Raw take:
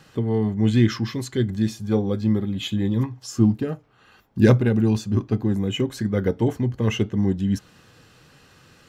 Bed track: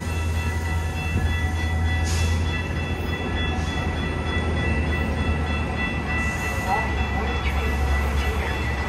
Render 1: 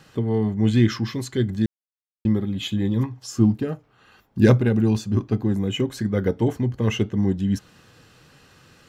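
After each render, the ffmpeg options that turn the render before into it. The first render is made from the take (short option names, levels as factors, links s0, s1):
-filter_complex "[0:a]asplit=3[s0][s1][s2];[s0]atrim=end=1.66,asetpts=PTS-STARTPTS,afade=t=out:st=1.656:d=0.004:c=hsin[s3];[s1]atrim=start=1.66:end=2.25,asetpts=PTS-STARTPTS,volume=0[s4];[s2]atrim=start=2.25,asetpts=PTS-STARTPTS,afade=t=in:d=0.004:c=hsin[s5];[s3][s4][s5]concat=n=3:v=0:a=1"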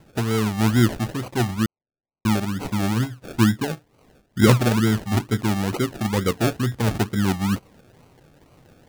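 -af "acrusher=samples=35:mix=1:aa=0.000001:lfo=1:lforange=21:lforate=2.2"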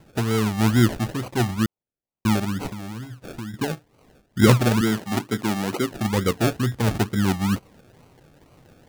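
-filter_complex "[0:a]asettb=1/sr,asplit=3[s0][s1][s2];[s0]atrim=end=2.694[s3];[s1]atrim=start=2.69:end=3.54,asetpts=PTS-STARTPTS,afade=t=in:d=0.004:c=qsin,afade=t=out:st=0.846:d=0.004:c=qsin,acompressor=threshold=0.0282:ratio=6:attack=3.2:release=140:knee=1:detection=peak[s4];[s2]atrim=start=3.536[s5];[s3][s4]acrossfade=d=0.004:c1=hsin:c2=qsin[s6];[s6][s5]acrossfade=d=0.004:c1=qsin:c2=hsin,asettb=1/sr,asplit=3[s7][s8][s9];[s7]atrim=end=4.814[s10];[s8]atrim=start=4.81:end=5.91,asetpts=PTS-STARTPTS,afade=t=in:d=0.004:c=qsin,afade=t=out:st=1.096:d=0.004:c=qsin,highpass=170[s11];[s9]atrim=start=5.906[s12];[s10][s11]acrossfade=d=0.004:c1=hsin:c2=qsin[s13];[s13][s12]acrossfade=d=0.004:c1=qsin:c2=hsin"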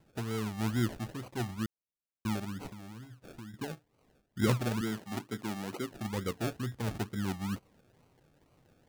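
-af "volume=0.224"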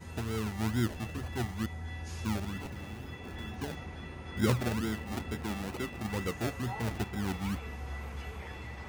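-filter_complex "[1:a]volume=0.126[s0];[0:a][s0]amix=inputs=2:normalize=0"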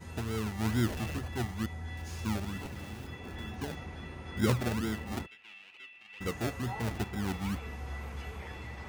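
-filter_complex "[0:a]asettb=1/sr,asplit=3[s0][s1][s2];[s0]atrim=end=0.654[s3];[s1]atrim=start=0.65:end=1.19,asetpts=PTS-STARTPTS,afade=t=in:d=0.004:c=qsin,afade=t=out:st=0.536:d=0.004:c=qsin,aeval=exprs='val(0)+0.5*0.0126*sgn(val(0))':c=same[s4];[s2]atrim=start=1.186[s5];[s3][s4]acrossfade=d=0.004:c1=hsin:c2=qsin[s6];[s6][s5]acrossfade=d=0.004:c1=qsin:c2=hsin,asettb=1/sr,asplit=3[s7][s8][s9];[s7]atrim=end=1.974[s10];[s8]atrim=start=1.97:end=3.07,asetpts=PTS-STARTPTS,afade=t=in:d=0.004:c=qsin,afade=t=out:st=1.096:d=0.004:c=qsin,aeval=exprs='val(0)*gte(abs(val(0)),0.00398)':c=same[s11];[s9]atrim=start=3.066[s12];[s10][s11]acrossfade=d=0.004:c1=hsin:c2=qsin[s13];[s13][s12]acrossfade=d=0.004:c1=qsin:c2=hsin,asplit=3[s14][s15][s16];[s14]afade=t=out:st=5.25:d=0.02[s17];[s15]bandpass=f=2700:t=q:w=4.9,afade=t=in:st=5.25:d=0.02,afade=t=out:st=6.2:d=0.02[s18];[s16]afade=t=in:st=6.2:d=0.02[s19];[s17][s18][s19]amix=inputs=3:normalize=0"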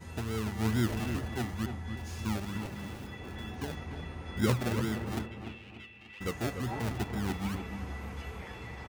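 -filter_complex "[0:a]asplit=2[s0][s1];[s1]adelay=295,lowpass=f=1800:p=1,volume=0.447,asplit=2[s2][s3];[s3]adelay=295,lowpass=f=1800:p=1,volume=0.41,asplit=2[s4][s5];[s5]adelay=295,lowpass=f=1800:p=1,volume=0.41,asplit=2[s6][s7];[s7]adelay=295,lowpass=f=1800:p=1,volume=0.41,asplit=2[s8][s9];[s9]adelay=295,lowpass=f=1800:p=1,volume=0.41[s10];[s0][s2][s4][s6][s8][s10]amix=inputs=6:normalize=0"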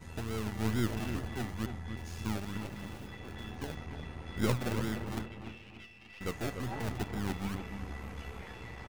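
-af "aeval=exprs='if(lt(val(0),0),0.447*val(0),val(0))':c=same"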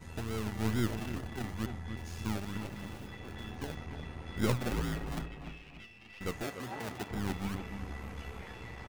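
-filter_complex "[0:a]asettb=1/sr,asplit=3[s0][s1][s2];[s0]atrim=end=0.964[s3];[s1]atrim=start=0.96:end=1.44,asetpts=PTS-STARTPTS,afade=t=in:d=0.004:c=qsin,afade=t=out:st=0.476:d=0.004:c=qsin,tremolo=f=33:d=0.462[s4];[s2]atrim=start=1.436[s5];[s3][s4]acrossfade=d=0.004:c1=hsin:c2=qsin[s6];[s6][s5]acrossfade=d=0.004:c1=qsin:c2=hsin,asettb=1/sr,asplit=3[s7][s8][s9];[s7]atrim=end=4.714[s10];[s8]atrim=start=4.71:end=5.8,asetpts=PTS-STARTPTS,afade=t=in:d=0.004:c=qsin,afade=t=out:st=1.086:d=0.004:c=qsin,afreqshift=-58[s11];[s9]atrim=start=5.796[s12];[s10][s11]acrossfade=d=0.004:c1=hsin:c2=qsin[s13];[s13][s12]acrossfade=d=0.004:c1=qsin:c2=hsin,asettb=1/sr,asplit=3[s14][s15][s16];[s14]atrim=end=6.434[s17];[s15]atrim=start=6.43:end=7.11,asetpts=PTS-STARTPTS,afade=t=in:d=0.004:c=qsin,afade=t=out:st=0.676:d=0.004:c=qsin,highpass=f=290:p=1[s18];[s16]atrim=start=7.106[s19];[s17][s18]acrossfade=d=0.004:c1=hsin:c2=qsin[s20];[s20][s19]acrossfade=d=0.004:c1=qsin:c2=hsin"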